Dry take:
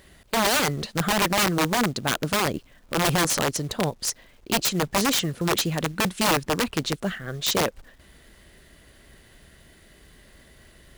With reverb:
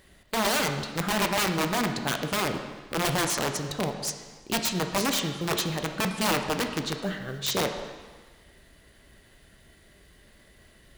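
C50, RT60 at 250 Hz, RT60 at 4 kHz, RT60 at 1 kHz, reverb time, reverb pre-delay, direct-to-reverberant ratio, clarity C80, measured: 7.0 dB, 1.4 s, 1.4 s, 1.5 s, 1.5 s, 9 ms, 5.0 dB, 8.5 dB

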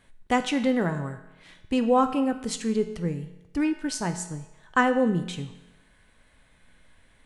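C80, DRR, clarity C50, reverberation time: 12.0 dB, 7.0 dB, 10.5 dB, 1.0 s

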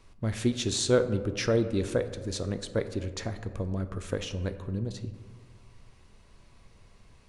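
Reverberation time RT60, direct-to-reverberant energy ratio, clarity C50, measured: 1.7 s, 9.0 dB, 11.5 dB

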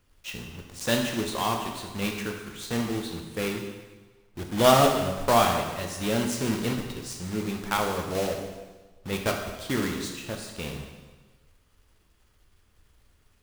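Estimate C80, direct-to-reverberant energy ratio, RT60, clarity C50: 6.5 dB, 2.0 dB, 1.3 s, 5.0 dB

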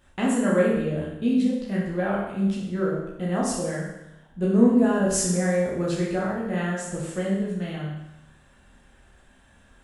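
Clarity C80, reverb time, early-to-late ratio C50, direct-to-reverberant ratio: 4.5 dB, 0.90 s, 1.5 dB, -5.5 dB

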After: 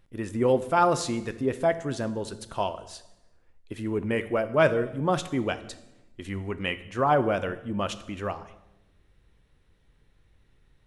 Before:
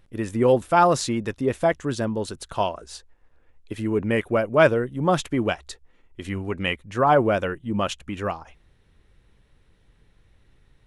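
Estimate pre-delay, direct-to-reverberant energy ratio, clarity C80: 6 ms, 11.5 dB, 16.5 dB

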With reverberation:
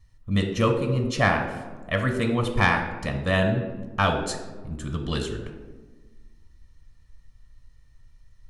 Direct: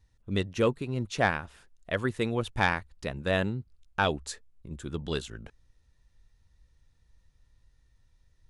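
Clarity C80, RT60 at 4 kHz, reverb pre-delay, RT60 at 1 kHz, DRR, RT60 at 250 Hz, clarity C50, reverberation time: 9.0 dB, 0.65 s, 3 ms, 1.2 s, 4.0 dB, 1.9 s, 7.0 dB, 1.4 s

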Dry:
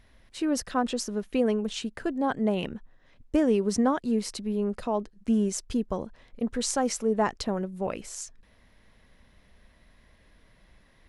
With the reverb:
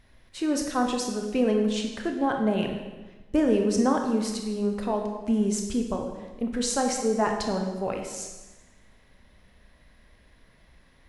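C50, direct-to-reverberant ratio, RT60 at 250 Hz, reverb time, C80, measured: 5.0 dB, 2.5 dB, 1.3 s, 1.2 s, 7.0 dB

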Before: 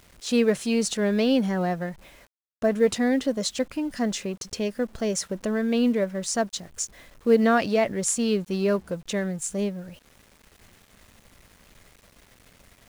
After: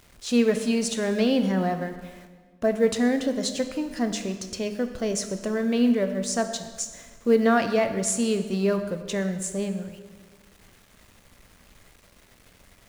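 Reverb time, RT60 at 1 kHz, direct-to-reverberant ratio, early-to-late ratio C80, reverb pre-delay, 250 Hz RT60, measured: 1.6 s, 1.5 s, 7.5 dB, 11.0 dB, 14 ms, 1.6 s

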